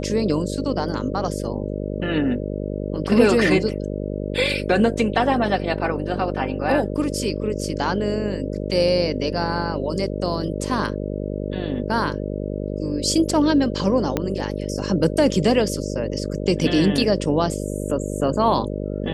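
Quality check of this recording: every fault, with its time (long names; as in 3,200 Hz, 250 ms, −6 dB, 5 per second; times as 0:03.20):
mains buzz 50 Hz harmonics 12 −27 dBFS
0:14.17: click −7 dBFS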